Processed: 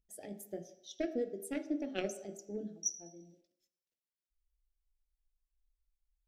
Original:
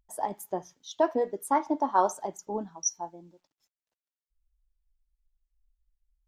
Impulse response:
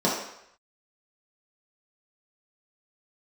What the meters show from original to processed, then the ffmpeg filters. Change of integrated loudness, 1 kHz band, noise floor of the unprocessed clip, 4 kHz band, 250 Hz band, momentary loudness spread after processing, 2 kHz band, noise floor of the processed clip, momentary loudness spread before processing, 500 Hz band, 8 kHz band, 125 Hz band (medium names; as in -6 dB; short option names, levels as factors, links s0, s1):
-10.5 dB, -26.5 dB, under -85 dBFS, -4.5 dB, -5.0 dB, 12 LU, -6.5 dB, under -85 dBFS, 12 LU, -9.5 dB, -6.5 dB, -3.5 dB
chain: -filter_complex "[0:a]aeval=exprs='0.335*(cos(1*acos(clip(val(0)/0.335,-1,1)))-cos(1*PI/2))+0.0596*(cos(3*acos(clip(val(0)/0.335,-1,1)))-cos(3*PI/2))':c=same,asuperstop=centerf=990:order=4:qfactor=0.7,asplit=2[s0][s1];[1:a]atrim=start_sample=2205,adelay=21[s2];[s1][s2]afir=irnorm=-1:irlink=0,volume=0.0596[s3];[s0][s3]amix=inputs=2:normalize=0,volume=0.891"